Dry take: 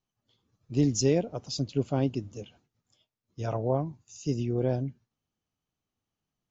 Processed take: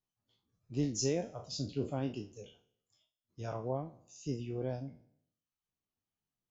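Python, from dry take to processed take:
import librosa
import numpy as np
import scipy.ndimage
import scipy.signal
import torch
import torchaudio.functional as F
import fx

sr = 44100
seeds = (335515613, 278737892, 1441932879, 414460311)

y = fx.spec_trails(x, sr, decay_s=0.71)
y = fx.dereverb_blind(y, sr, rt60_s=0.63)
y = y * 10.0 ** (-8.5 / 20.0)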